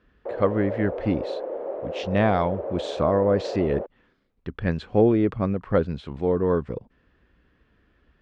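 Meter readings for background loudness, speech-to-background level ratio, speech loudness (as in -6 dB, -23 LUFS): -32.5 LUFS, 8.0 dB, -24.5 LUFS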